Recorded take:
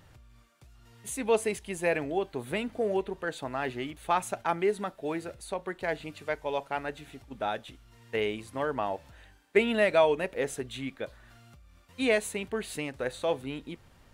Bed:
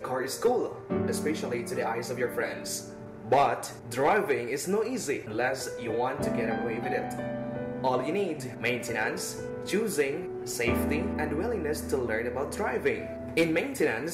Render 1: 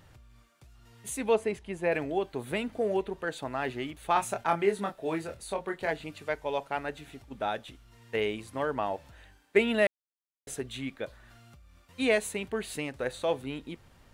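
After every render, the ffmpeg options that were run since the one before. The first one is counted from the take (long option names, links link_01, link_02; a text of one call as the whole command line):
ffmpeg -i in.wav -filter_complex "[0:a]asplit=3[link_01][link_02][link_03];[link_01]afade=type=out:start_time=1.33:duration=0.02[link_04];[link_02]lowpass=frequency=1900:poles=1,afade=type=in:start_time=1.33:duration=0.02,afade=type=out:start_time=1.91:duration=0.02[link_05];[link_03]afade=type=in:start_time=1.91:duration=0.02[link_06];[link_04][link_05][link_06]amix=inputs=3:normalize=0,asettb=1/sr,asplit=3[link_07][link_08][link_09];[link_07]atrim=end=4.134[link_10];[link_08]atrim=start=4.13:end=5.91,asetpts=PTS-STARTPTS,afade=type=in:duration=0.004:curve=qsin,afade=type=out:start_time=1.776:duration=0.004:curve=qsin,asplit=2[link_11][link_12];[link_12]adelay=25,volume=-4.5dB[link_13];[link_11][link_13]amix=inputs=2:normalize=0,atrim=end_sample=78498[link_14];[link_09]atrim=start=5.906[link_15];[link_10][link_14]acrossfade=duration=0.004:curve1=hsin:curve2=qsin[link_16];[link_16][link_15]acrossfade=duration=0.004:curve1=qsin:curve2=hsin,asplit=3[link_17][link_18][link_19];[link_17]atrim=end=9.87,asetpts=PTS-STARTPTS,afade=type=out:start_time=9.866:duration=0.004:curve=hsin[link_20];[link_18]atrim=start=9.87:end=10.47,asetpts=PTS-STARTPTS,volume=0[link_21];[link_19]atrim=start=10.47,asetpts=PTS-STARTPTS,afade=type=in:duration=0.004:curve=hsin[link_22];[link_20][link_21][link_22]concat=n=3:v=0:a=1" out.wav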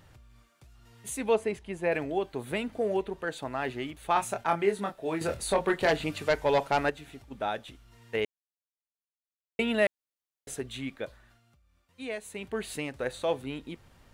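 ffmpeg -i in.wav -filter_complex "[0:a]asettb=1/sr,asplit=3[link_01][link_02][link_03];[link_01]atrim=end=5.214[link_04];[link_02]atrim=start=5.21:end=6.9,asetpts=PTS-STARTPTS,afade=type=in:duration=0.004:curve=qsin,afade=type=out:start_time=1.686:duration=0.004:curve=qsin,aeval=exprs='0.133*sin(PI/2*1.78*val(0)/0.133)':channel_layout=same[link_05];[link_03]atrim=start=6.896[link_06];[link_04][link_05]acrossfade=duration=0.004:curve1=hsin:curve2=qsin[link_07];[link_07][link_06]acrossfade=duration=0.004:curve1=qsin:curve2=hsin,asplit=5[link_08][link_09][link_10][link_11][link_12];[link_08]atrim=end=8.25,asetpts=PTS-STARTPTS,afade=type=out:start_time=8.246:duration=0.004:curve=hsin[link_13];[link_09]atrim=start=8.25:end=9.59,asetpts=PTS-STARTPTS,volume=0[link_14];[link_10]atrim=start=9.59:end=11.41,asetpts=PTS-STARTPTS,afade=type=in:duration=0.004:curve=hsin,afade=type=out:start_time=1.46:duration=0.36:silence=0.281838[link_15];[link_11]atrim=start=11.41:end=12.23,asetpts=PTS-STARTPTS,volume=-11dB[link_16];[link_12]atrim=start=12.23,asetpts=PTS-STARTPTS,afade=type=in:duration=0.36:silence=0.281838[link_17];[link_13][link_14][link_15][link_16][link_17]concat=n=5:v=0:a=1" out.wav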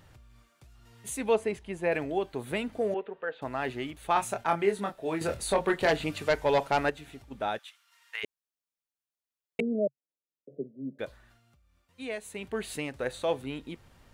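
ffmpeg -i in.wav -filter_complex "[0:a]asettb=1/sr,asplit=3[link_01][link_02][link_03];[link_01]atrim=end=2.944[link_04];[link_02]atrim=start=2.94:end=3.42,asetpts=PTS-STARTPTS,afade=type=in:duration=0.004:curve=qsin,afade=type=out:start_time=0.476:duration=0.004:curve=qsin,highpass=330,equalizer=frequency=330:width_type=q:width=4:gain=-9,equalizer=frequency=480:width_type=q:width=4:gain=4,equalizer=frequency=690:width_type=q:width=4:gain=-3,equalizer=frequency=980:width_type=q:width=4:gain=-5,equalizer=frequency=2200:width_type=q:width=4:gain=-5,lowpass=frequency=2700:width=0.5412,lowpass=frequency=2700:width=1.3066[link_05];[link_03]atrim=start=3.416[link_06];[link_04][link_05]acrossfade=duration=0.004:curve1=hsin:curve2=qsin[link_07];[link_07][link_06]acrossfade=duration=0.004:curve1=qsin:curve2=hsin,asplit=3[link_08][link_09][link_10];[link_08]afade=type=out:start_time=7.57:duration=0.02[link_11];[link_09]highpass=frequency=1100:width=0.5412,highpass=frequency=1100:width=1.3066,afade=type=in:start_time=7.57:duration=0.02,afade=type=out:start_time=8.23:duration=0.02[link_12];[link_10]afade=type=in:start_time=8.23:duration=0.02[link_13];[link_11][link_12][link_13]amix=inputs=3:normalize=0,asettb=1/sr,asplit=3[link_14][link_15][link_16];[link_14]atrim=end=9.604[link_17];[link_15]atrim=start=9.6:end=10.99,asetpts=PTS-STARTPTS,afade=type=in:duration=0.004:curve=qsin,afade=type=out:start_time=1.386:duration=0.004:curve=qsin,asuperpass=centerf=290:order=20:qfactor=0.6[link_18];[link_16]atrim=start=10.986[link_19];[link_17][link_18]acrossfade=duration=0.004:curve1=hsin:curve2=qsin[link_20];[link_20][link_19]acrossfade=duration=0.004:curve1=qsin:curve2=hsin" out.wav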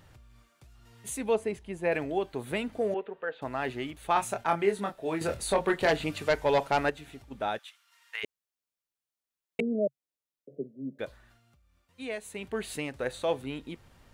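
ffmpeg -i in.wav -filter_complex "[0:a]asettb=1/sr,asplit=3[link_01][link_02][link_03];[link_01]atrim=end=1.184[link_04];[link_02]atrim=start=1.18:end=1.85,asetpts=PTS-STARTPTS,afade=type=in:duration=0.004:curve=qsin,afade=type=out:start_time=0.666:duration=0.004:curve=qsin,equalizer=frequency=1900:width=0.31:gain=-3.5[link_05];[link_03]atrim=start=1.846[link_06];[link_04][link_05]acrossfade=duration=0.004:curve1=hsin:curve2=qsin[link_07];[link_07][link_06]acrossfade=duration=0.004:curve1=qsin:curve2=hsin" out.wav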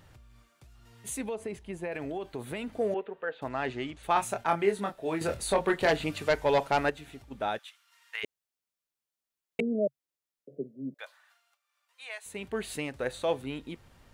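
ffmpeg -i in.wav -filter_complex "[0:a]asettb=1/sr,asplit=3[link_01][link_02][link_03];[link_01]atrim=end=1.214[link_04];[link_02]atrim=start=1.21:end=2.68,asetpts=PTS-STARTPTS,afade=type=in:duration=0.004:curve=qsin,afade=type=out:start_time=1.466:duration=0.004:curve=qsin,acompressor=threshold=-31dB:ratio=6:attack=3.2:release=140:knee=1:detection=peak[link_05];[link_03]atrim=start=2.676[link_06];[link_04][link_05]acrossfade=duration=0.004:curve1=hsin:curve2=qsin[link_07];[link_07][link_06]acrossfade=duration=0.004:curve1=qsin:curve2=hsin,asplit=3[link_08][link_09][link_10];[link_08]afade=type=out:start_time=3.48:duration=0.02[link_11];[link_09]lowpass=frequency=8100:width=0.5412,lowpass=frequency=8100:width=1.3066,afade=type=in:start_time=3.48:duration=0.02,afade=type=out:start_time=4.02:duration=0.02[link_12];[link_10]afade=type=in:start_time=4.02:duration=0.02[link_13];[link_11][link_12][link_13]amix=inputs=3:normalize=0,asettb=1/sr,asplit=3[link_14][link_15][link_16];[link_14]atrim=end=10.944[link_17];[link_15]atrim=start=10.94:end=12.26,asetpts=PTS-STARTPTS,afade=type=in:duration=0.004:curve=qsin,afade=type=out:start_time=1.316:duration=0.004:curve=qsin,highpass=frequency=800:width=0.5412,highpass=frequency=800:width=1.3066[link_18];[link_16]atrim=start=12.256[link_19];[link_17][link_18]acrossfade=duration=0.004:curve1=hsin:curve2=qsin[link_20];[link_20][link_19]acrossfade=duration=0.004:curve1=qsin:curve2=hsin" out.wav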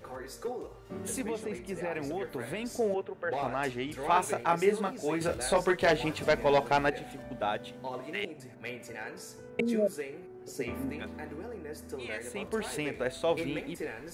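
ffmpeg -i in.wav -i bed.wav -filter_complex "[1:a]volume=-11.5dB[link_01];[0:a][link_01]amix=inputs=2:normalize=0" out.wav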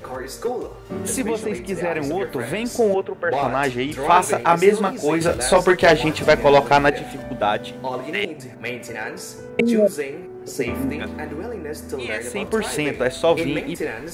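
ffmpeg -i in.wav -af "volume=11.5dB,alimiter=limit=-2dB:level=0:latency=1" out.wav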